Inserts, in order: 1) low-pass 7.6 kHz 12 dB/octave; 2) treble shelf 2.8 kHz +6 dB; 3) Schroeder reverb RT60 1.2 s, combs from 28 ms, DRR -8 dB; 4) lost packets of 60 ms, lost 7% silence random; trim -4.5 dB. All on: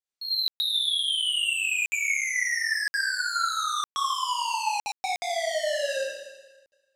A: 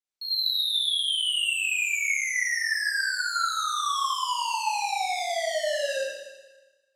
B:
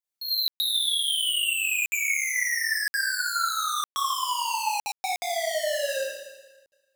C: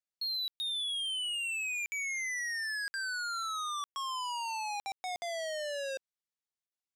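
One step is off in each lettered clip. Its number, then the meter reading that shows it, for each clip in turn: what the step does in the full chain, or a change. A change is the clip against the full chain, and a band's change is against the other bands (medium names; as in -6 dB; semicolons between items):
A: 4, momentary loudness spread change -1 LU; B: 1, 8 kHz band +3.0 dB; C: 3, crest factor change -9.0 dB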